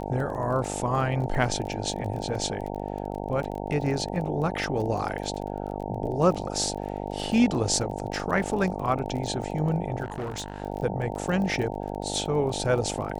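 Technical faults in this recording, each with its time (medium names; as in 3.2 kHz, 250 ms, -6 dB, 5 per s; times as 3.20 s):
buzz 50 Hz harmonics 18 -33 dBFS
crackle 25 per s -33 dBFS
10.03–10.62 s: clipped -28.5 dBFS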